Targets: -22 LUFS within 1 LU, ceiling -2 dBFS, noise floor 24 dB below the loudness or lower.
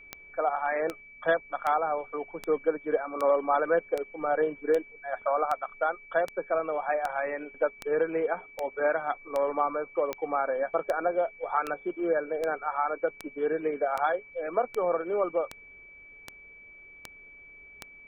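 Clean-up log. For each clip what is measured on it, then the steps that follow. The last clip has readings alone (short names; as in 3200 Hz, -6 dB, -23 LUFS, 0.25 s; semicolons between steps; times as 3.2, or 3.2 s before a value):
clicks 24; steady tone 2300 Hz; tone level -48 dBFS; loudness -29.5 LUFS; peak -12.0 dBFS; loudness target -22.0 LUFS
-> de-click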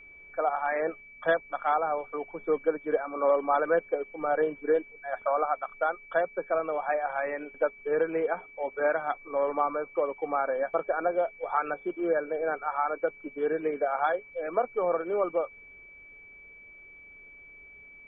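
clicks 0; steady tone 2300 Hz; tone level -48 dBFS
-> notch 2300 Hz, Q 30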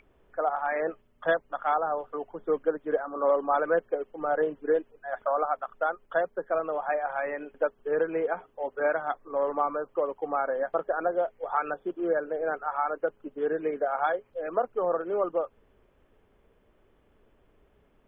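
steady tone none; loudness -29.5 LUFS; peak -12.0 dBFS; loudness target -22.0 LUFS
-> gain +7.5 dB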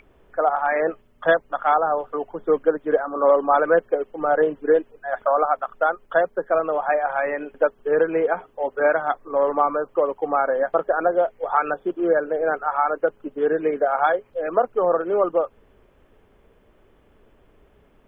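loudness -22.0 LUFS; peak -4.5 dBFS; noise floor -58 dBFS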